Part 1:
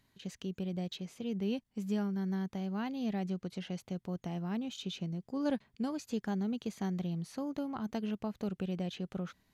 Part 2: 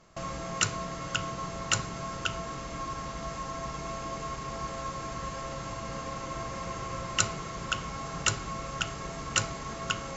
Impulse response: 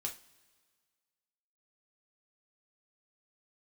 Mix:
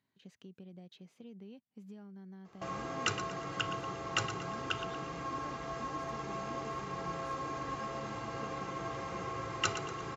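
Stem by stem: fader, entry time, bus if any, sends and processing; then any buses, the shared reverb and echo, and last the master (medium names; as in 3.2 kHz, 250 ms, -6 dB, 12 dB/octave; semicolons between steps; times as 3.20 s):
-9.5 dB, 0.00 s, no send, no echo send, compression 6:1, threshold -37 dBFS, peak gain reduction 10 dB
-2.0 dB, 2.45 s, no send, echo send -11 dB, treble shelf 6.7 kHz -8 dB; comb 2.5 ms, depth 55%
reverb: none
echo: feedback delay 117 ms, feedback 42%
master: high-pass 130 Hz 12 dB/octave; treble shelf 5 kHz -10 dB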